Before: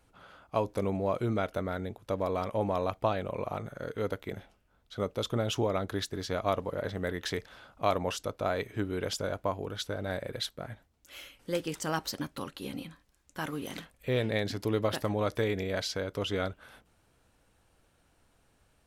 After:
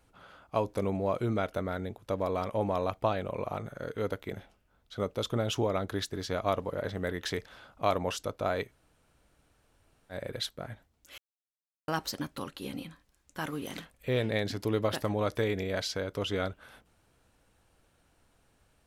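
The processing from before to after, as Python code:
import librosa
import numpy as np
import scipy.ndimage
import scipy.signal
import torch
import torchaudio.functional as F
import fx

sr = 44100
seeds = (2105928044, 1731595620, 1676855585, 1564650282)

y = fx.edit(x, sr, fx.room_tone_fill(start_s=8.67, length_s=1.47, crossfade_s=0.1),
    fx.silence(start_s=11.18, length_s=0.7), tone=tone)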